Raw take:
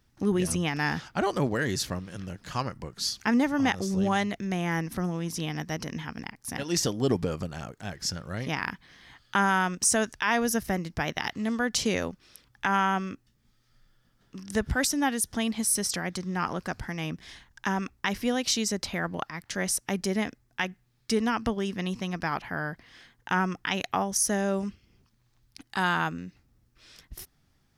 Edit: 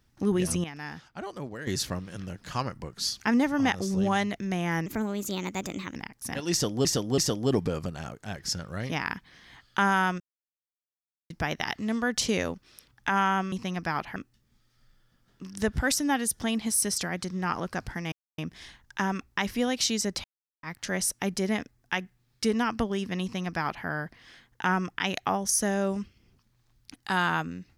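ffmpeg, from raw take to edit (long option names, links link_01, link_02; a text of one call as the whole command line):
ffmpeg -i in.wav -filter_complex "[0:a]asplit=14[link_01][link_02][link_03][link_04][link_05][link_06][link_07][link_08][link_09][link_10][link_11][link_12][link_13][link_14];[link_01]atrim=end=0.642[link_15];[link_02]atrim=start=0.638:end=1.672,asetpts=PTS-STARTPTS,volume=-11dB[link_16];[link_03]atrim=start=1.668:end=4.864[link_17];[link_04]atrim=start=4.86:end=6.18,asetpts=PTS-STARTPTS,asetrate=53361,aresample=44100,atrim=end_sample=48109,asetpts=PTS-STARTPTS[link_18];[link_05]atrim=start=6.176:end=7.082[link_19];[link_06]atrim=start=6.748:end=7.082[link_20];[link_07]atrim=start=6.748:end=9.77,asetpts=PTS-STARTPTS,afade=type=out:start_time=3.018:duration=0.004:curve=hsin[link_21];[link_08]atrim=start=9.77:end=10.87,asetpts=PTS-STARTPTS,volume=0[link_22];[link_09]atrim=start=10.87:end=13.092,asetpts=PTS-STARTPTS,afade=type=in:duration=0.004:curve=hsin[link_23];[link_10]atrim=start=21.888:end=22.532[link_24];[link_11]atrim=start=13.088:end=17.05,asetpts=PTS-STARTPTS,afade=type=out:start_time=3.958:duration=0.004:curve=hsin,apad=pad_dur=0.26[link_25];[link_12]atrim=start=17.05:end=18.91,asetpts=PTS-STARTPTS,afade=type=in:duration=0.004:curve=hsin,afade=type=out:start_time=1.856:duration=0.004:curve=hsin[link_26];[link_13]atrim=start=18.91:end=19.3,asetpts=PTS-STARTPTS,volume=0[link_27];[link_14]atrim=start=19.3,asetpts=PTS-STARTPTS,afade=type=in:duration=0.004:curve=hsin[link_28];[link_15][link_16]acrossfade=duration=0.004:curve1=hsin:curve2=hsin[link_29];[link_29][link_17]acrossfade=duration=0.004:curve1=hsin:curve2=hsin[link_30];[link_30][link_18]acrossfade=duration=0.004:curve1=hsin:curve2=hsin[link_31];[link_31][link_19]acrossfade=duration=0.004:curve1=hsin:curve2=hsin[link_32];[link_32][link_20]acrossfade=duration=0.004:curve1=hsin:curve2=hsin[link_33];[link_21][link_22][link_23]concat=n=3:v=0:a=1[link_34];[link_33][link_34]acrossfade=duration=0.004:curve1=hsin:curve2=hsin[link_35];[link_35][link_24]acrossfade=duration=0.004:curve1=hsin:curve2=hsin[link_36];[link_25][link_26][link_27][link_28]concat=n=4:v=0:a=1[link_37];[link_36][link_37]acrossfade=duration=0.004:curve1=hsin:curve2=hsin" out.wav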